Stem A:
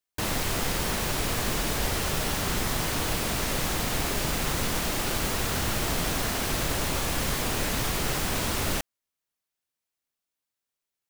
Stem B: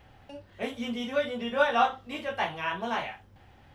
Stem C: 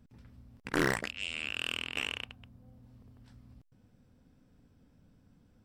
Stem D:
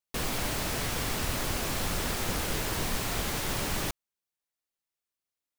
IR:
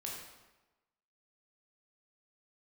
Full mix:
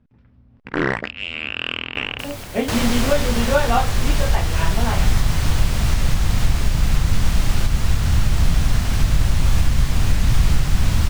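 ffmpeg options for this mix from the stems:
-filter_complex "[0:a]acrossover=split=8400[a][b];[b]acompressor=threshold=-41dB:ratio=4:attack=1:release=60[c];[a][c]amix=inputs=2:normalize=0,asubboost=boost=9:cutoff=130,adelay=2500,volume=-2dB[d];[1:a]lowshelf=f=490:g=9.5,adelay=1950,volume=-2dB[e];[2:a]lowpass=2.8k,volume=1.5dB[f];[3:a]alimiter=level_in=3.5dB:limit=-24dB:level=0:latency=1:release=387,volume=-3.5dB,adelay=2050,volume=-6.5dB[g];[d][e][f][g]amix=inputs=4:normalize=0,dynaudnorm=f=240:g=7:m=11dB,alimiter=limit=-5.5dB:level=0:latency=1:release=425"

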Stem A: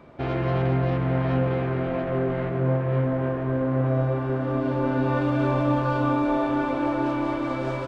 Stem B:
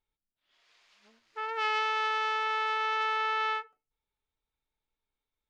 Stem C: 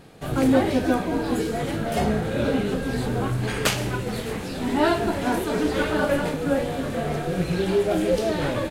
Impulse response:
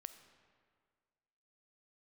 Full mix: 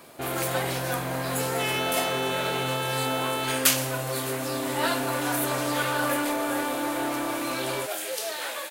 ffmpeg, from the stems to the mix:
-filter_complex "[0:a]asoftclip=type=tanh:threshold=-22dB,volume=0.5dB[a];[1:a]aecho=1:1:4.3:0.72,volume=-2dB[b];[2:a]highpass=820,volume=-2.5dB[c];[a][b][c]amix=inputs=3:normalize=0,aemphasis=mode=production:type=bsi"

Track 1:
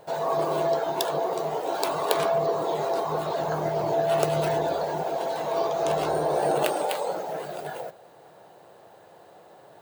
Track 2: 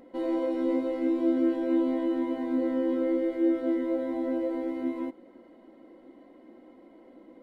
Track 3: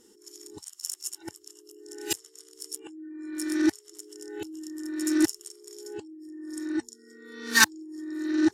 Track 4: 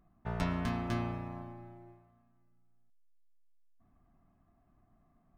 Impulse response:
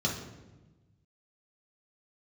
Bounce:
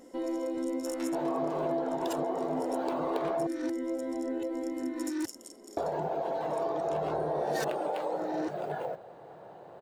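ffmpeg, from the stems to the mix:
-filter_complex "[0:a]acontrast=79,lowpass=f=1.1k:p=1,adelay=1050,volume=-3.5dB,asplit=3[a][b][c];[a]atrim=end=3.47,asetpts=PTS-STARTPTS,afade=t=out:st=3.466:d=0.004:c=hsin[d];[b]atrim=start=3.47:end=5.77,asetpts=PTS-STARTPTS,volume=0[e];[c]atrim=start=5.77,asetpts=PTS-STARTPTS,afade=t=in:d=0.004:c=hsin[f];[d][e][f]concat=n=3:v=0:a=1[g];[1:a]volume=-1dB[h];[2:a]asoftclip=type=tanh:threshold=-17.5dB,volume=-5.5dB[i];[3:a]highpass=810,adelay=600,volume=-3dB[j];[g][h][i][j]amix=inputs=4:normalize=0,acompressor=threshold=-31dB:ratio=3"

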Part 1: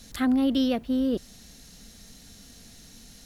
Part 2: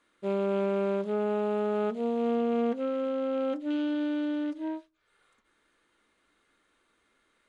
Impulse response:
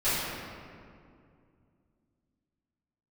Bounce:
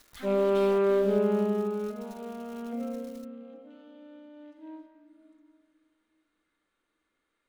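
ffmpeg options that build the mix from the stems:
-filter_complex "[0:a]equalizer=f=200:t=o:w=2.1:g=-14.5,aeval=exprs='(tanh(56.2*val(0)+0.65)-tanh(0.65))/56.2':c=same,acrusher=bits=7:mix=0:aa=0.000001,volume=-5.5dB[a];[1:a]volume=10.5dB,afade=t=out:st=0.91:d=0.79:silence=0.298538,afade=t=out:st=2.67:d=0.52:silence=0.237137,afade=t=in:st=4.29:d=0.63:silence=0.298538,asplit=2[b][c];[c]volume=-14dB[d];[2:a]atrim=start_sample=2205[e];[d][e]afir=irnorm=-1:irlink=0[f];[a][b][f]amix=inputs=3:normalize=0"

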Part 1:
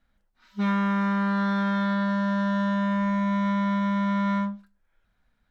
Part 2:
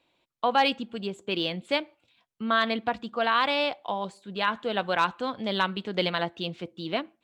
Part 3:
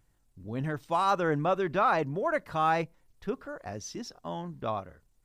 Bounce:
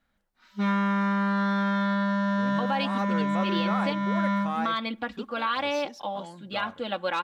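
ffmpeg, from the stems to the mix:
-filter_complex "[0:a]lowshelf=f=85:g=-10.5,volume=0.5dB[a];[1:a]aecho=1:1:3.6:0.76,adelay=2150,volume=-4dB[b];[2:a]aeval=exprs='if(lt(val(0),0),0.708*val(0),val(0))':c=same,highpass=f=200:p=1,adelay=1900,volume=-3.5dB[c];[a][b][c]amix=inputs=3:normalize=0,alimiter=limit=-16.5dB:level=0:latency=1:release=247"

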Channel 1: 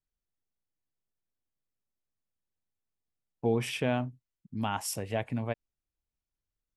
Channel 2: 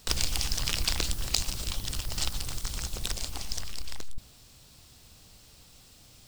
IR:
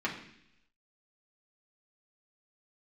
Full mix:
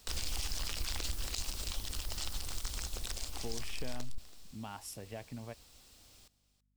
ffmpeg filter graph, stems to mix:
-filter_complex "[0:a]acompressor=threshold=-29dB:ratio=6,aeval=exprs='val(0)+0.000501*(sin(2*PI*50*n/s)+sin(2*PI*2*50*n/s)/2+sin(2*PI*3*50*n/s)/3+sin(2*PI*4*50*n/s)/4+sin(2*PI*5*50*n/s)/5)':c=same,volume=-10dB[a];[1:a]equalizer=f=140:t=o:w=0.66:g=-12.5,volume=-4.5dB,asplit=2[b][c];[c]volume=-17dB,aecho=0:1:329:1[d];[a][b][d]amix=inputs=3:normalize=0,alimiter=level_in=1dB:limit=-24dB:level=0:latency=1:release=22,volume=-1dB"

